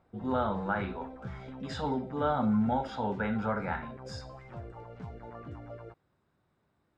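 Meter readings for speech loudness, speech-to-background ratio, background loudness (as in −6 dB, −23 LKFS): −32.0 LKFS, 13.0 dB, −45.0 LKFS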